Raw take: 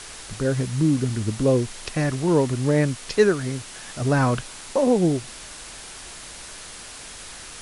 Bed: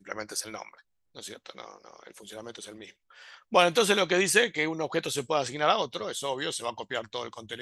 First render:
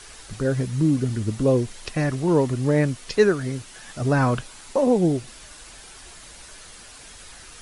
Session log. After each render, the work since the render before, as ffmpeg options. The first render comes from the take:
ffmpeg -i in.wav -af "afftdn=noise_reduction=7:noise_floor=-40" out.wav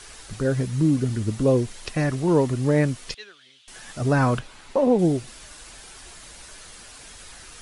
ffmpeg -i in.wav -filter_complex "[0:a]asettb=1/sr,asplit=3[link_01][link_02][link_03];[link_01]atrim=end=3.144[link_04];[link_02]atrim=start=3.14:end=3.68,asetpts=PTS-STARTPTS,afade=type=in:duration=0.004:curve=qsin,afade=type=out:start_time=0.536:duration=0.004:curve=qsin,bandpass=frequency=3300:width_type=q:width=5.4[link_05];[link_03]atrim=start=3.676[link_06];[link_04][link_05]acrossfade=duration=0.004:curve1=hsin:curve2=qsin[link_07];[link_07][link_06]acrossfade=duration=0.004:curve1=qsin:curve2=hsin,asettb=1/sr,asplit=3[link_08][link_09][link_10];[link_08]atrim=end=4.394[link_11];[link_09]atrim=start=4.39:end=4.99,asetpts=PTS-STARTPTS,afade=type=in:duration=0.004:curve=qsin,afade=type=out:start_time=0.596:duration=0.004:curve=qsin,acrossover=split=4200[link_12][link_13];[link_13]acompressor=threshold=-55dB:ratio=4:attack=1:release=60[link_14];[link_12][link_14]amix=inputs=2:normalize=0[link_15];[link_10]atrim=start=4.986[link_16];[link_11][link_15]acrossfade=duration=0.004:curve1=hsin:curve2=qsin[link_17];[link_17][link_16]acrossfade=duration=0.004:curve1=qsin:curve2=hsin" out.wav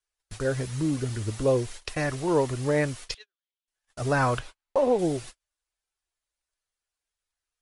ffmpeg -i in.wav -af "agate=range=-45dB:threshold=-36dB:ratio=16:detection=peak,equalizer=frequency=200:width=1.1:gain=-12" out.wav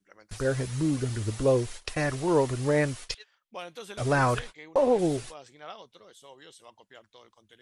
ffmpeg -i in.wav -i bed.wav -filter_complex "[1:a]volume=-19dB[link_01];[0:a][link_01]amix=inputs=2:normalize=0" out.wav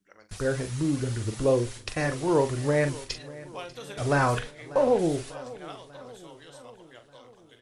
ffmpeg -i in.wav -filter_complex "[0:a]asplit=2[link_01][link_02];[link_02]adelay=42,volume=-9.5dB[link_03];[link_01][link_03]amix=inputs=2:normalize=0,aecho=1:1:593|1186|1779|2372|2965:0.112|0.0673|0.0404|0.0242|0.0145" out.wav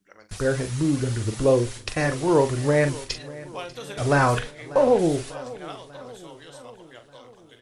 ffmpeg -i in.wav -af "volume=4dB" out.wav

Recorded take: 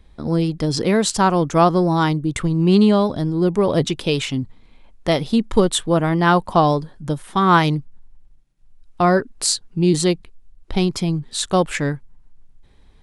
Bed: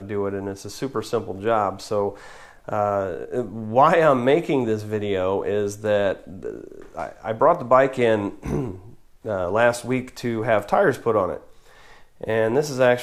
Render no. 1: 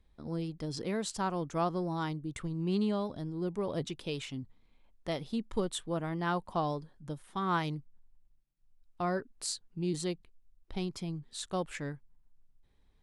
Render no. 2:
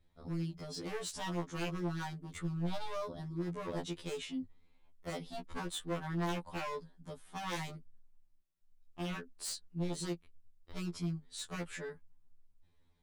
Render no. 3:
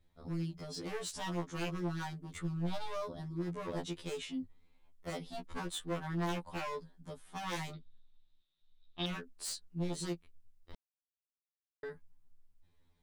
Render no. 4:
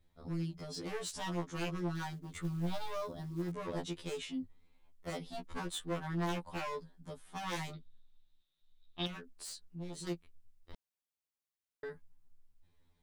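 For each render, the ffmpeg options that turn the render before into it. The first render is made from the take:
ffmpeg -i in.wav -af "volume=-17dB" out.wav
ffmpeg -i in.wav -af "aeval=exprs='0.0282*(abs(mod(val(0)/0.0282+3,4)-2)-1)':channel_layout=same,afftfilt=real='re*2*eq(mod(b,4),0)':imag='im*2*eq(mod(b,4),0)':win_size=2048:overlap=0.75" out.wav
ffmpeg -i in.wav -filter_complex "[0:a]asettb=1/sr,asplit=3[link_01][link_02][link_03];[link_01]atrim=end=7.734[link_04];[link_02]atrim=start=7.73:end=9.06,asetpts=PTS-STARTPTS,afade=type=in:duration=0.004:curve=qsin,afade=type=out:start_time=1.326:duration=0.004:curve=qsin,lowpass=frequency=3700:width_type=q:width=15[link_05];[link_03]atrim=start=9.056[link_06];[link_04][link_05]acrossfade=duration=0.004:curve1=hsin:curve2=qsin[link_07];[link_07][link_06]acrossfade=duration=0.004:curve1=qsin:curve2=hsin,asplit=3[link_08][link_09][link_10];[link_08]atrim=end=10.75,asetpts=PTS-STARTPTS,afade=type=out:start_time=10.746:duration=0.004:curve=hsin[link_11];[link_09]atrim=start=10.75:end=11.83,asetpts=PTS-STARTPTS,volume=0[link_12];[link_10]atrim=start=11.83,asetpts=PTS-STARTPTS,afade=type=in:duration=0.004:curve=hsin[link_13];[link_11][link_12][link_13]concat=n=3:v=0:a=1" out.wav
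ffmpeg -i in.wav -filter_complex "[0:a]asettb=1/sr,asplit=3[link_01][link_02][link_03];[link_01]atrim=end=1.954[link_04];[link_02]atrim=start=1.95:end=3.52,asetpts=PTS-STARTPTS,afade=type=in:duration=0.004:curve=qsin,afade=type=out:start_time=1.566:duration=0.004:curve=qsin,acrusher=bits=7:mode=log:mix=0:aa=0.000001[link_05];[link_03]atrim=start=3.516[link_06];[link_04][link_05]acrossfade=duration=0.004:curve1=hsin:curve2=qsin[link_07];[link_07][link_06]acrossfade=duration=0.004:curve1=qsin:curve2=hsin,asettb=1/sr,asplit=3[link_08][link_09][link_10];[link_08]atrim=end=9.074[link_11];[link_09]atrim=start=9.07:end=10.07,asetpts=PTS-STARTPTS,afade=type=in:duration=0.004:curve=qsin,afade=type=out:start_time=0.996:duration=0.004:curve=qsin,acompressor=threshold=-46dB:ratio=2:attack=3.2:release=140:knee=1:detection=peak[link_12];[link_10]atrim=start=10.066[link_13];[link_11][link_12]acrossfade=duration=0.004:curve1=hsin:curve2=qsin[link_14];[link_14][link_13]acrossfade=duration=0.004:curve1=qsin:curve2=hsin" out.wav

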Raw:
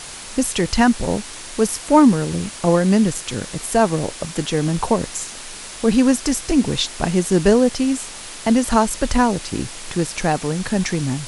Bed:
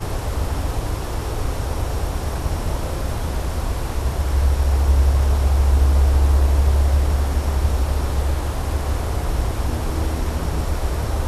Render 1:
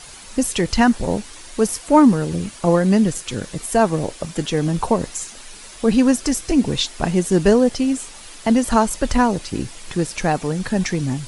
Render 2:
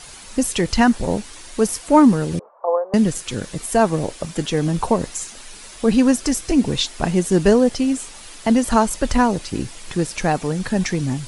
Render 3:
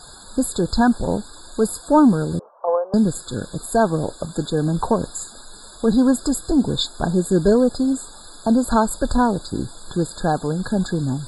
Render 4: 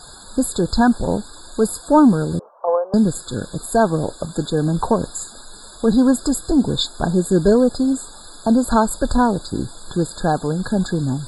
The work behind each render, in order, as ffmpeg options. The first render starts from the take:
ffmpeg -i in.wav -af "afftdn=noise_reduction=8:noise_floor=-35" out.wav
ffmpeg -i in.wav -filter_complex "[0:a]asettb=1/sr,asplit=3[link_01][link_02][link_03];[link_01]atrim=end=2.394[link_04];[link_02]atrim=start=2.39:end=2.94,asetpts=PTS-STARTPTS,afade=type=in:duration=0.004:curve=qsin,afade=type=out:start_time=0.546:duration=0.004:curve=qsin,asuperpass=centerf=750:order=8:qfactor=1.1[link_05];[link_03]atrim=start=2.936[link_06];[link_04][link_05]acrossfade=duration=0.004:curve1=hsin:curve2=qsin[link_07];[link_07][link_06]acrossfade=duration=0.004:curve1=qsin:curve2=hsin" out.wav
ffmpeg -i in.wav -af "asoftclip=type=tanh:threshold=-5dB,afftfilt=real='re*eq(mod(floor(b*sr/1024/1700),2),0)':imag='im*eq(mod(floor(b*sr/1024/1700),2),0)':win_size=1024:overlap=0.75" out.wav
ffmpeg -i in.wav -af "volume=1.5dB" out.wav

